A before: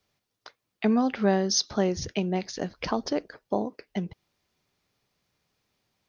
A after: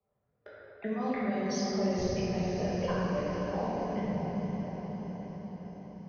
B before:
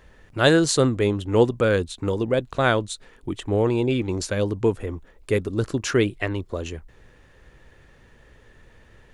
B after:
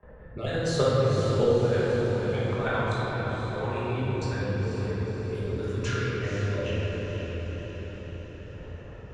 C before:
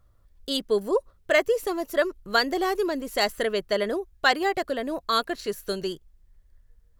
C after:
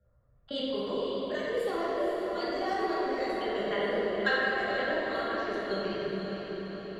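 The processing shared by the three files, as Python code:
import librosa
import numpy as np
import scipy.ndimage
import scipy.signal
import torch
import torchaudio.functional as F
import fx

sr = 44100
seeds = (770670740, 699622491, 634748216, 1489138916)

y = fx.spec_dropout(x, sr, seeds[0], share_pct=22)
y = fx.lowpass(y, sr, hz=2900.0, slope=6)
y = fx.env_lowpass(y, sr, base_hz=1000.0, full_db=-21.0)
y = scipy.signal.sosfilt(scipy.signal.butter(2, 53.0, 'highpass', fs=sr, output='sos'), y)
y = fx.peak_eq(y, sr, hz=280.0, db=-10.5, octaves=0.84)
y = fx.level_steps(y, sr, step_db=19)
y = fx.rotary(y, sr, hz=1.0)
y = fx.echo_diffused(y, sr, ms=492, feedback_pct=48, wet_db=-8.0)
y = fx.room_shoebox(y, sr, seeds[1], volume_m3=150.0, walls='hard', distance_m=1.3)
y = fx.band_squash(y, sr, depth_pct=40)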